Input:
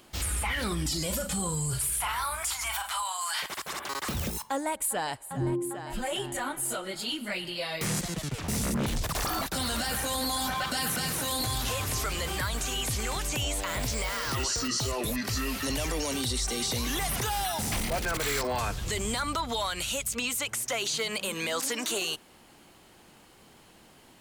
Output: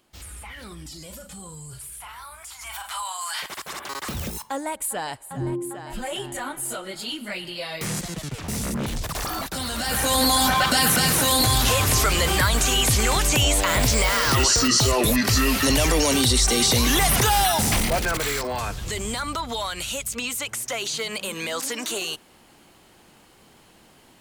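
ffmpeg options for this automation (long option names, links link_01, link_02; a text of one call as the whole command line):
ffmpeg -i in.wav -af "volume=11dB,afade=type=in:start_time=2.51:duration=0.53:silence=0.281838,afade=type=in:start_time=9.76:duration=0.45:silence=0.334965,afade=type=out:start_time=17.41:duration=0.99:silence=0.354813" out.wav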